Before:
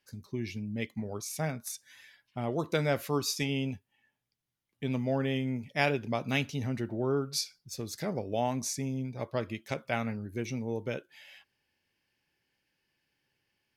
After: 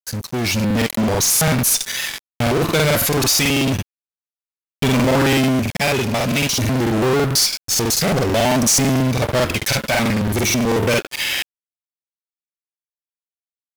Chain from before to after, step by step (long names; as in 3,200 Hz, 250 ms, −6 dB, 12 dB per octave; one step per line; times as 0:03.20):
high-shelf EQ 2,800 Hz +11.5 dB
in parallel at −3 dB: fuzz pedal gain 48 dB, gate −52 dBFS
on the sum: bit reduction 7 bits
automatic gain control gain up to 8 dB
regular buffer underruns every 0.11 s, samples 2,048, repeat, from 0:00.55
level −6 dB